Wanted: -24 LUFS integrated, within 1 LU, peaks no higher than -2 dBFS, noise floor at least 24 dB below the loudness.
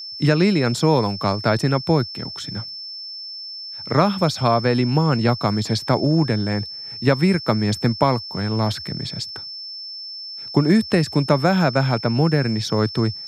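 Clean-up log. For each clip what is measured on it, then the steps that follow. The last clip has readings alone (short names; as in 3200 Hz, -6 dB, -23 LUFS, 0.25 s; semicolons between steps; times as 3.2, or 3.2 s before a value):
steady tone 5300 Hz; tone level -31 dBFS; loudness -20.0 LUFS; peak -2.5 dBFS; loudness target -24.0 LUFS
-> notch 5300 Hz, Q 30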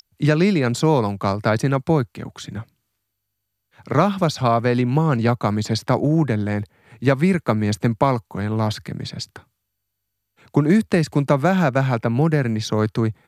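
steady tone none; loudness -20.0 LUFS; peak -2.5 dBFS; loudness target -24.0 LUFS
-> gain -4 dB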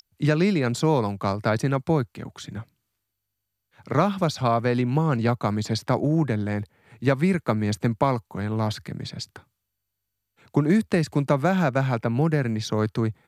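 loudness -24.0 LUFS; peak -6.5 dBFS; noise floor -81 dBFS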